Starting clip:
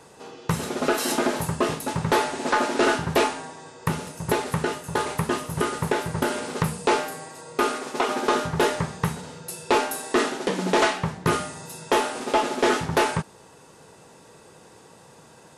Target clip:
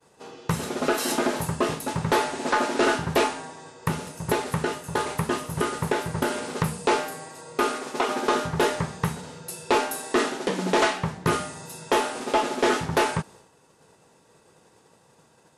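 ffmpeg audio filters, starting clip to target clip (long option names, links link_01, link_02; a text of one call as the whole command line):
ffmpeg -i in.wav -af "agate=range=-33dB:threshold=-43dB:ratio=3:detection=peak,volume=-1dB" out.wav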